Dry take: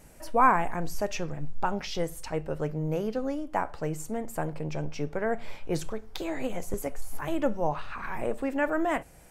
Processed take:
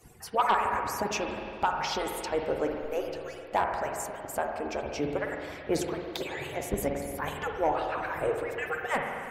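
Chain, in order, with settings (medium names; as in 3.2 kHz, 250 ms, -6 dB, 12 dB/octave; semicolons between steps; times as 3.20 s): harmonic-percussive separation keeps percussive; spring tank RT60 2.3 s, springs 46/53 ms, chirp 35 ms, DRR 2.5 dB; sine folder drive 4 dB, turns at -12.5 dBFS; trim -4.5 dB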